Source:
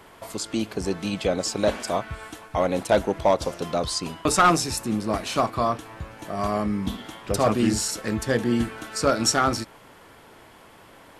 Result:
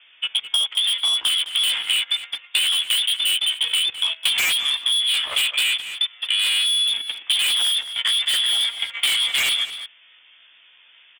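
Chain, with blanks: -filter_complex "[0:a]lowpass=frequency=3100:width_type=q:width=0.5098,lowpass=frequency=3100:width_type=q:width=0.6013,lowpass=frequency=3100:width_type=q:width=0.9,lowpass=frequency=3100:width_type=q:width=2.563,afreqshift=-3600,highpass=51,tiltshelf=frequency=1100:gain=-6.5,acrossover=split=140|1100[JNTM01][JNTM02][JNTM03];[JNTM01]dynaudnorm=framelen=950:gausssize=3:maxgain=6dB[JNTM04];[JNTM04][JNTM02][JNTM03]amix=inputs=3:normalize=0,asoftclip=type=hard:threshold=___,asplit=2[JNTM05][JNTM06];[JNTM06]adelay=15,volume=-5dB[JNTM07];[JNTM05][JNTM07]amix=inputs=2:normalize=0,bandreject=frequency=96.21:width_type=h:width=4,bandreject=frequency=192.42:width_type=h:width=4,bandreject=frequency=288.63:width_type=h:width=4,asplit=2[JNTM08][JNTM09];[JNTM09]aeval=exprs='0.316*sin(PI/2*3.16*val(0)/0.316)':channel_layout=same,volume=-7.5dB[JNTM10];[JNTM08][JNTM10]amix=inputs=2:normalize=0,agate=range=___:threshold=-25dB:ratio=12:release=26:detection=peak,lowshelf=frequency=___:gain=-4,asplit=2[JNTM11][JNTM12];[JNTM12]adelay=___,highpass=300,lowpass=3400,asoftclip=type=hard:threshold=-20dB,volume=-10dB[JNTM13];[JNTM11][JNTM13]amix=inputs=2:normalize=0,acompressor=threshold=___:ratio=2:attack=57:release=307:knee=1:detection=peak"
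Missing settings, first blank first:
-14dB, -18dB, 220, 210, -24dB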